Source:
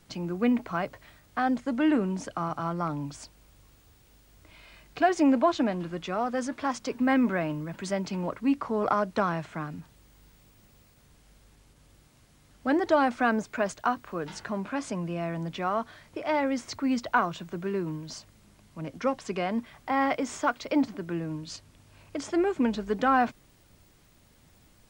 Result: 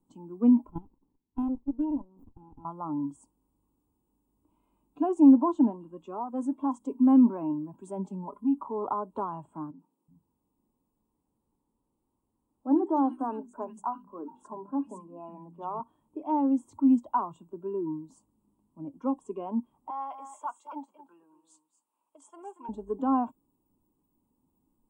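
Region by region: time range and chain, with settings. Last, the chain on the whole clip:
0.69–2.65 low shelf 170 Hz -3 dB + level quantiser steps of 14 dB + running maximum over 65 samples
7.99–8.62 comb 4.9 ms, depth 61% + compressor 2:1, threshold -29 dBFS
9.71–15.8 high shelf 3800 Hz -3.5 dB + notches 50/100/150/200/250/300/350/400 Hz + three bands offset in time mids, highs, lows 80/370 ms, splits 180/2000 Hz
19.9–22.69 HPF 940 Hz + echo 0.23 s -9.5 dB
whole clip: spectral noise reduction 12 dB; EQ curve 130 Hz 0 dB, 270 Hz +15 dB, 660 Hz -4 dB, 940 Hz +11 dB, 1900 Hz -29 dB, 2800 Hz -12 dB, 5000 Hz -28 dB, 7900 Hz -1 dB; gain -8 dB

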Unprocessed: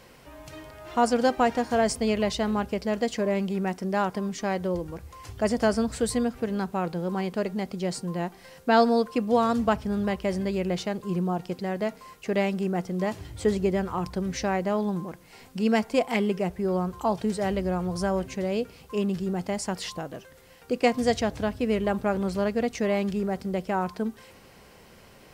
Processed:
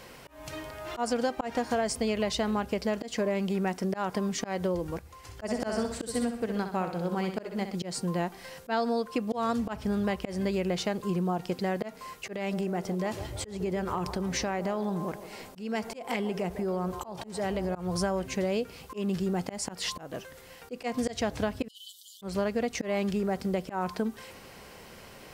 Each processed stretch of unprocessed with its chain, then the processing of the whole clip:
4.99–7.75 flutter echo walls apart 10.9 m, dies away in 0.59 s + upward expander, over -34 dBFS
12.36–17.75 compressor, threshold -29 dBFS + band-limited delay 0.152 s, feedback 61%, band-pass 580 Hz, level -11.5 dB
21.68–22.22 brick-wall FIR high-pass 2900 Hz + negative-ratio compressor -49 dBFS, ratio -0.5
whole clip: low shelf 350 Hz -3.5 dB; auto swell 0.209 s; compressor, threshold -30 dBFS; gain +4.5 dB

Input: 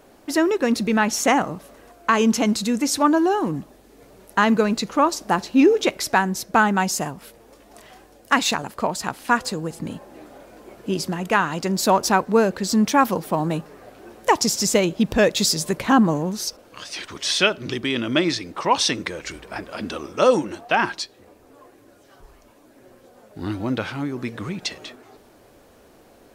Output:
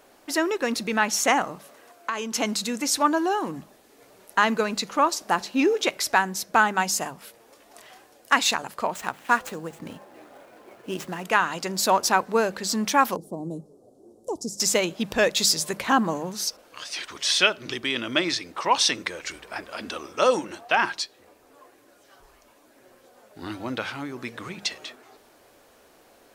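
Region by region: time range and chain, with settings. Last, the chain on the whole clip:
1.55–2.35 HPF 130 Hz 6 dB/oct + compressor 5:1, threshold -22 dBFS
8.94–11.24 median filter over 9 samples + high shelf 8900 Hz +4 dB
13.16–14.6 Chebyshev band-stop 380–9400 Hz + air absorption 72 m
whole clip: low shelf 430 Hz -11 dB; notches 50/100/150/200 Hz

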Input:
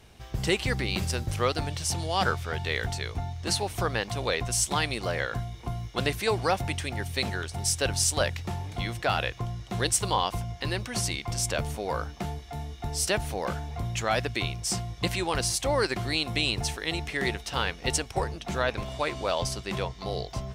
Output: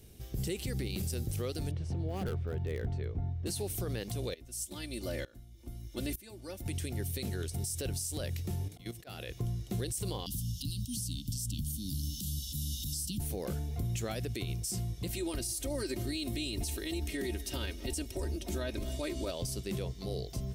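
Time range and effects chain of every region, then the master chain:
1.71–3.46 LPF 1500 Hz + hard clip -23.5 dBFS
4.34–6.66 comb 3.4 ms, depth 78% + upward compressor, threshold -37 dBFS + dB-ramp tremolo swelling 1.1 Hz, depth 22 dB
8.68–9.31 low shelf 130 Hz -9 dB + auto swell 0.121 s + level quantiser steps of 12 dB
10.26–13.2 Chebyshev band-stop 280–3000 Hz, order 5 + three-band squash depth 100%
15.1–19.31 comb 3.2 ms, depth 76% + echo 0.243 s -22.5 dB
whole clip: EQ curve 410 Hz 0 dB, 930 Hz -17 dB, 6900 Hz -1 dB, 13000 Hz +10 dB; limiter -27 dBFS

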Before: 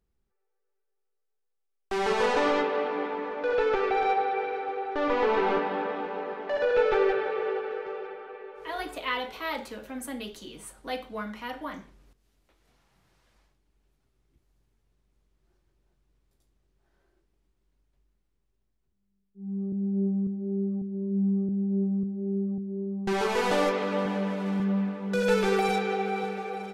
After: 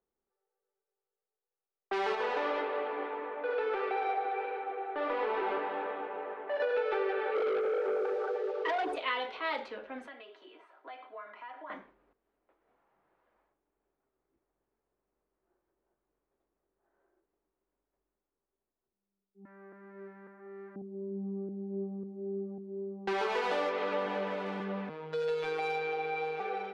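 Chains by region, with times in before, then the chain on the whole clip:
2.15–6.6 tone controls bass -1 dB, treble -4 dB + flange 1.6 Hz, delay 2.9 ms, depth 9 ms, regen -76%
7.35–8.96 formant sharpening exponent 2 + sample leveller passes 3
10.07–11.7 HPF 550 Hz + comb 3 ms + compressor 3:1, threshold -43 dBFS
19.45–20.76 G.711 law mismatch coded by mu + HPF 1300 Hz 6 dB/oct + resonant high shelf 2400 Hz -10.5 dB, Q 3
24.89–26.4 comb 4.3 ms, depth 56% + compressor 2.5:1, threshold -27 dBFS + robotiser 157 Hz
whole clip: low-pass opened by the level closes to 1200 Hz, open at -26 dBFS; three-band isolator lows -22 dB, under 300 Hz, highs -16 dB, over 4800 Hz; compressor, threshold -28 dBFS

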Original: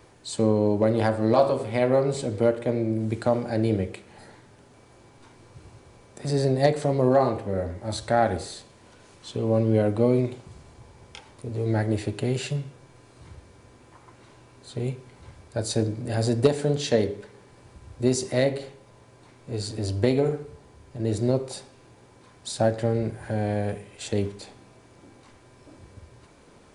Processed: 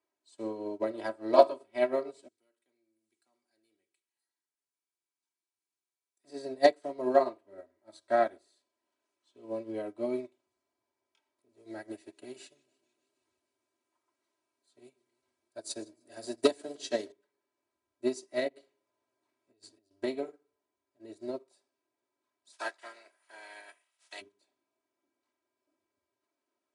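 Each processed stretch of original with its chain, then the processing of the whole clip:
2.28–6.24 pre-emphasis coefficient 0.9 + notch 610 Hz, Q 5.7 + hard clip -33 dBFS
11.49–17.12 high shelf 4500 Hz +7.5 dB + warbling echo 0.152 s, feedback 74%, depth 175 cents, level -17 dB
18.48–19.91 low shelf 100 Hz +5.5 dB + negative-ratio compressor -31 dBFS, ratio -0.5
22.52–24.2 spectral limiter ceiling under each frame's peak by 24 dB + Bessel high-pass 750 Hz
whole clip: HPF 310 Hz 12 dB/oct; comb 3.1 ms, depth 85%; upward expander 2.5:1, over -35 dBFS

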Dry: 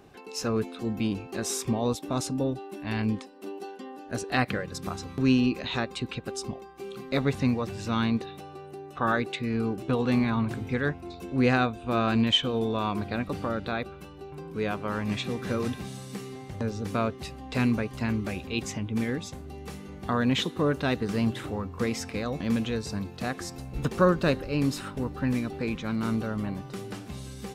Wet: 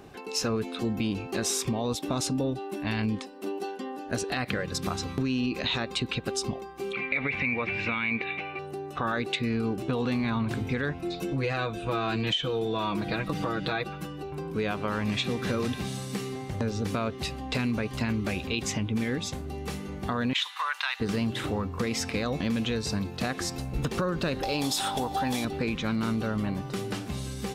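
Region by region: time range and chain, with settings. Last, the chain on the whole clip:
6.93–8.59 synth low-pass 2300 Hz, resonance Q 16 + low shelf 220 Hz -7 dB
10.99–14.23 comb 6.2 ms, depth 92% + compressor 2:1, threshold -31 dBFS
20.33–21 Chebyshev high-pass 920 Hz, order 4 + bell 2200 Hz +5 dB 1.7 oct
24.43–25.45 tone controls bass -6 dB, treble +12 dB + upward compressor, threshold -34 dBFS + small resonant body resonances 780/3400 Hz, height 16 dB, ringing for 20 ms
whole clip: limiter -20.5 dBFS; dynamic EQ 3500 Hz, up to +4 dB, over -49 dBFS, Q 0.86; compressor 3:1, threshold -31 dBFS; gain +5 dB

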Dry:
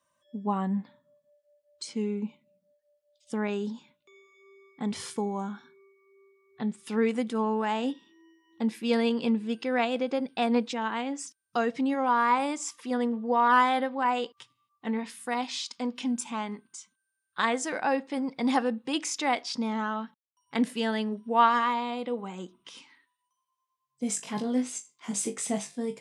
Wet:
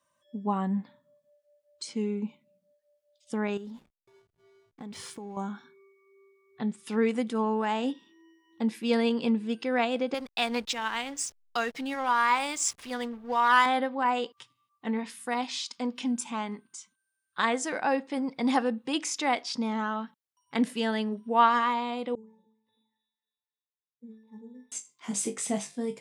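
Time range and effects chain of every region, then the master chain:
3.57–5.37 backlash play -48.5 dBFS + compressor, threshold -38 dBFS
10.14–13.66 tilt shelf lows -8.5 dB, about 1100 Hz + backlash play -39.5 dBFS
22.15–24.72 octave resonator A, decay 0.59 s + thin delay 0.271 s, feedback 40%, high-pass 1500 Hz, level -8.5 dB + decimation joined by straight lines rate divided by 6×
whole clip: dry

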